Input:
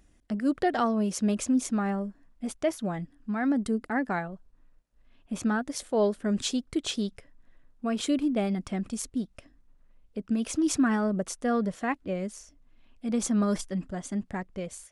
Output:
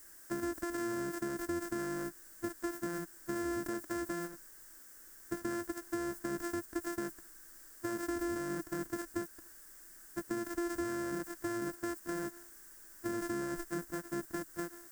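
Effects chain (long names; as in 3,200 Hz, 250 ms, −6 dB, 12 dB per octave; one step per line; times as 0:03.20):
samples sorted by size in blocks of 128 samples
background noise violet −45 dBFS
noise gate −33 dBFS, range −9 dB
in parallel at −5 dB: bit-depth reduction 8 bits, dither triangular
on the sum: flat-topped bell 3,100 Hz −10.5 dB 1.1 octaves
brickwall limiter −21 dBFS, peak gain reduction 11 dB
downward compressor, threshold −30 dBFS, peak gain reduction 5.5 dB
thirty-one-band graphic EQ 125 Hz −8 dB, 315 Hz +9 dB, 800 Hz −6 dB, 1,600 Hz +11 dB, 8,000 Hz +6 dB
level −7.5 dB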